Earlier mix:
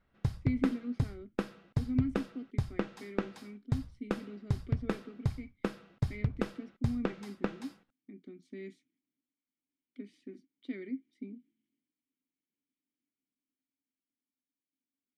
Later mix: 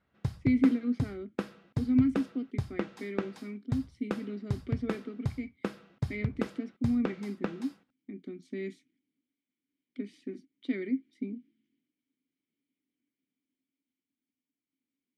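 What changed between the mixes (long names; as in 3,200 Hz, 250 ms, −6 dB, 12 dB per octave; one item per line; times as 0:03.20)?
speech +7.5 dB
master: add high-pass filter 72 Hz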